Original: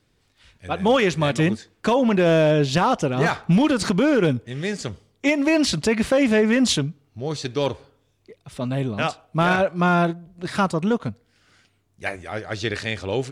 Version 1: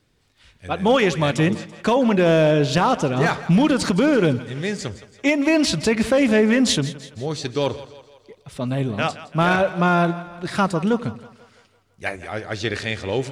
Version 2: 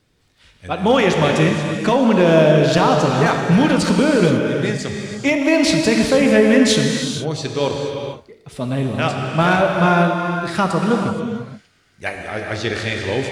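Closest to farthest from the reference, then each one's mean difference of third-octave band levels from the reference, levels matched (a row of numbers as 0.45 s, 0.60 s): 1, 2; 2.5 dB, 6.5 dB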